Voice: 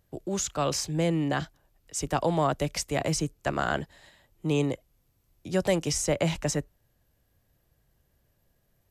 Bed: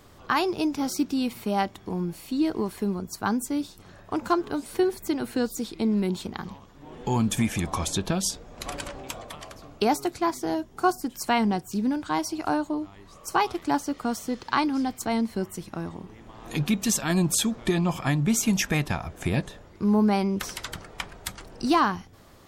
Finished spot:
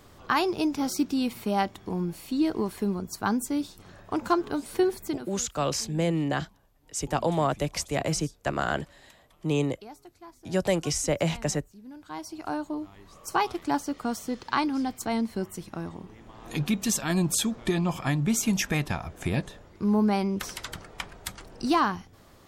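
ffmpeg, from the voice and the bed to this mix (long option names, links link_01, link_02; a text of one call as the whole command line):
ffmpeg -i stem1.wav -i stem2.wav -filter_complex "[0:a]adelay=5000,volume=0dB[link_01];[1:a]volume=20dB,afade=type=out:start_time=4.96:duration=0.37:silence=0.0794328,afade=type=in:start_time=11.84:duration=1.17:silence=0.0944061[link_02];[link_01][link_02]amix=inputs=2:normalize=0" out.wav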